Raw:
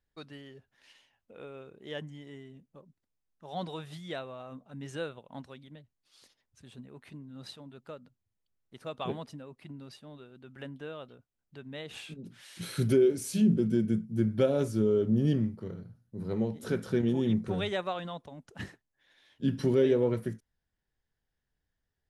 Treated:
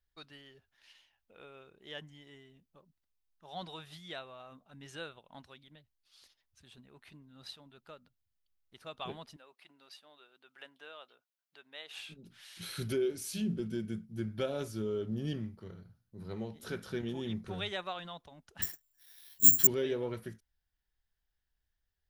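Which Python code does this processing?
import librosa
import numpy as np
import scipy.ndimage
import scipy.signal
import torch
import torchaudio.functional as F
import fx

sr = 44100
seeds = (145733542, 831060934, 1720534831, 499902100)

y = fx.highpass(x, sr, hz=500.0, slope=12, at=(9.36, 11.98))
y = fx.resample_bad(y, sr, factor=6, down='none', up='zero_stuff', at=(18.62, 19.67))
y = fx.graphic_eq_10(y, sr, hz=(125, 250, 500, 1000, 2000, 8000), db=(-11, -10, -9, -4, -4, -7))
y = y * librosa.db_to_amplitude(2.5)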